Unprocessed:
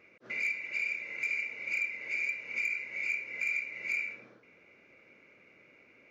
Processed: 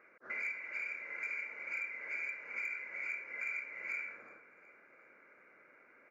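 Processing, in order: HPF 630 Hz 6 dB/oct; resonant high shelf 2200 Hz -11.5 dB, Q 3; on a send: feedback echo 0.367 s, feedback 53%, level -21 dB; on the sum: gain +1 dB

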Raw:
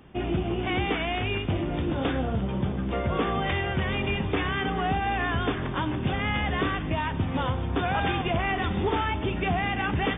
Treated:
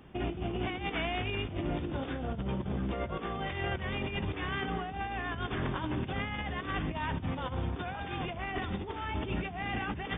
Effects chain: negative-ratio compressor -29 dBFS, ratio -0.5; gain -5 dB

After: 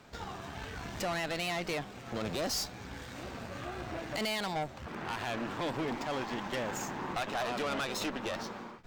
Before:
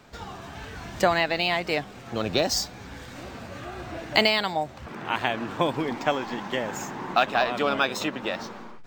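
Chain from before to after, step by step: limiter -15.5 dBFS, peak gain reduction 11 dB; tube stage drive 30 dB, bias 0.65

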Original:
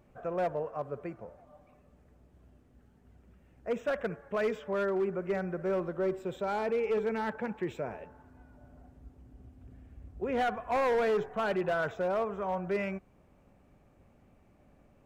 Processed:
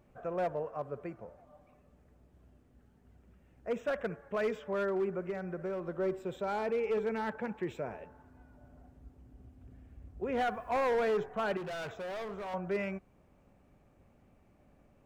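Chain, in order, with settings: 5.29–5.87 compressor, threshold -32 dBFS, peak gain reduction 5.5 dB; 10.37–10.85 requantised 12-bit, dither none; 11.57–12.54 hard clip -35.5 dBFS, distortion -13 dB; gain -2 dB

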